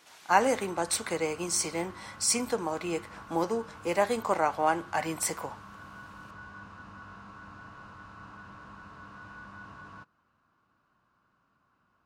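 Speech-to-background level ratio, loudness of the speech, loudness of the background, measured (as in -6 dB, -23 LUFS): 18.5 dB, -29.5 LUFS, -48.0 LUFS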